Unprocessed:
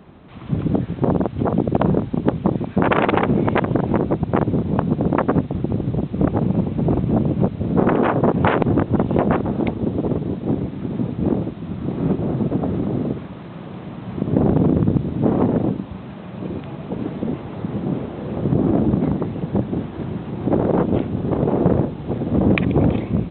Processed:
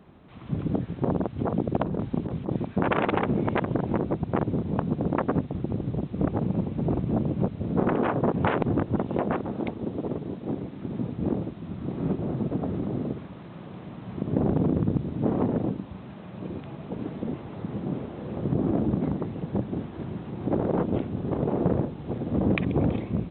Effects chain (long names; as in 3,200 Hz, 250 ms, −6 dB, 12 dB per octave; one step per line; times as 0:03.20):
0:01.83–0:02.67: compressor whose output falls as the input rises −19 dBFS, ratio −0.5
0:08.98–0:10.85: low-shelf EQ 150 Hz −7.5 dB
level −7.5 dB